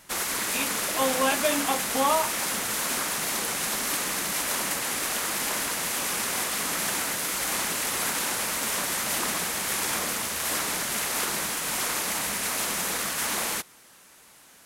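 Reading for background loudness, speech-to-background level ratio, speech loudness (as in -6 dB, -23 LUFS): -26.0 LUFS, -2.0 dB, -28.0 LUFS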